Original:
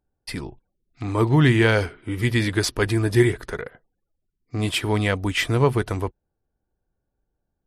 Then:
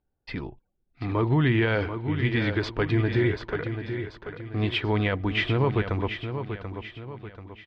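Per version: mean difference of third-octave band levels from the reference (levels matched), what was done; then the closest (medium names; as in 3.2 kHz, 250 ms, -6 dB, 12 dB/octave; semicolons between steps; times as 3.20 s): 6.0 dB: low-pass 3.6 kHz 24 dB/octave; peak limiter -12.5 dBFS, peak gain reduction 7.5 dB; on a send: feedback delay 736 ms, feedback 43%, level -8.5 dB; on the sum: trim -2 dB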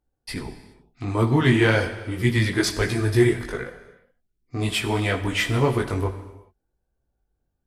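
3.5 dB: chorus voices 4, 1.4 Hz, delay 19 ms, depth 3.1 ms; in parallel at -9.5 dB: one-sided clip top -23.5 dBFS; on the sum: gated-style reverb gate 440 ms falling, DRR 9 dB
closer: second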